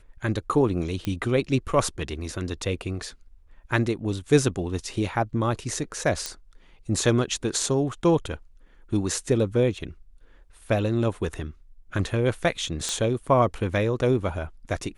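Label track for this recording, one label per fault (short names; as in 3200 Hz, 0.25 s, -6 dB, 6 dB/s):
1.050000	1.050000	pop -15 dBFS
6.260000	6.260000	pop -13 dBFS
12.890000	12.890000	pop -13 dBFS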